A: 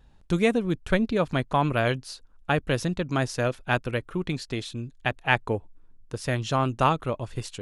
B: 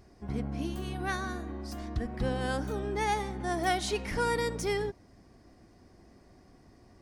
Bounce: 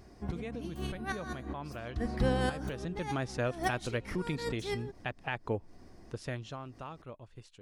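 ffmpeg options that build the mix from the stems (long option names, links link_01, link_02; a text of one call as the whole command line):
ffmpeg -i stem1.wav -i stem2.wav -filter_complex "[0:a]highshelf=frequency=8900:gain=-11.5,alimiter=limit=-14.5dB:level=0:latency=1:release=158,volume=-6dB,afade=type=in:start_time=2.6:duration=0.74:silence=0.281838,afade=type=out:start_time=6.07:duration=0.52:silence=0.251189,asplit=2[link_01][link_02];[1:a]volume=2.5dB[link_03];[link_02]apad=whole_len=309516[link_04];[link_03][link_04]sidechaincompress=threshold=-52dB:ratio=10:attack=9.9:release=109[link_05];[link_01][link_05]amix=inputs=2:normalize=0" out.wav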